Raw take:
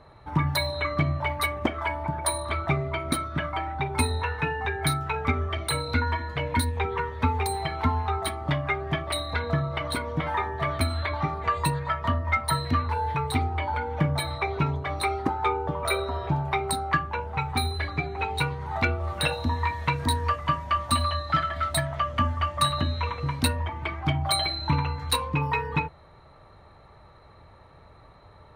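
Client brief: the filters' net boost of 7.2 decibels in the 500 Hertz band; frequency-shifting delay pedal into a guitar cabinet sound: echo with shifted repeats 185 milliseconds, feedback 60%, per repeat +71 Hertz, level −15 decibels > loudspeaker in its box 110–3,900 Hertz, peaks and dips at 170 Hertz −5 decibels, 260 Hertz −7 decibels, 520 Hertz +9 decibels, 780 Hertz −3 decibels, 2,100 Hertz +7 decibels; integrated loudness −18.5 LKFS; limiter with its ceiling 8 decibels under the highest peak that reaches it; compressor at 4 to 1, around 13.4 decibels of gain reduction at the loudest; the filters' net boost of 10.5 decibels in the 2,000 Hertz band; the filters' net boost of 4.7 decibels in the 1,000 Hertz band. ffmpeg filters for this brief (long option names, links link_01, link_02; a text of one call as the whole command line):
ffmpeg -i in.wav -filter_complex "[0:a]equalizer=frequency=500:width_type=o:gain=3.5,equalizer=frequency=1000:width_type=o:gain=3.5,equalizer=frequency=2000:width_type=o:gain=6.5,acompressor=threshold=-31dB:ratio=4,alimiter=limit=-24dB:level=0:latency=1,asplit=7[link_01][link_02][link_03][link_04][link_05][link_06][link_07];[link_02]adelay=185,afreqshift=71,volume=-15dB[link_08];[link_03]adelay=370,afreqshift=142,volume=-19.4dB[link_09];[link_04]adelay=555,afreqshift=213,volume=-23.9dB[link_10];[link_05]adelay=740,afreqshift=284,volume=-28.3dB[link_11];[link_06]adelay=925,afreqshift=355,volume=-32.7dB[link_12];[link_07]adelay=1110,afreqshift=426,volume=-37.2dB[link_13];[link_01][link_08][link_09][link_10][link_11][link_12][link_13]amix=inputs=7:normalize=0,highpass=110,equalizer=frequency=170:width_type=q:width=4:gain=-5,equalizer=frequency=260:width_type=q:width=4:gain=-7,equalizer=frequency=520:width_type=q:width=4:gain=9,equalizer=frequency=780:width_type=q:width=4:gain=-3,equalizer=frequency=2100:width_type=q:width=4:gain=7,lowpass=frequency=3900:width=0.5412,lowpass=frequency=3900:width=1.3066,volume=14.5dB" out.wav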